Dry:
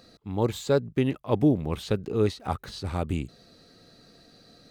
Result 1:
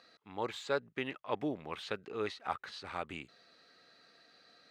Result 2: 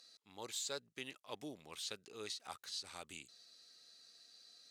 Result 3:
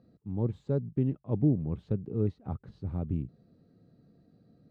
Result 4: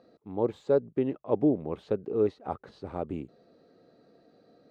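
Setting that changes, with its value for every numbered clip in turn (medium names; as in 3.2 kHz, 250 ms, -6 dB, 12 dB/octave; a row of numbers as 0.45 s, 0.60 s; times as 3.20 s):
band-pass filter, frequency: 1.8 kHz, 6.8 kHz, 140 Hz, 470 Hz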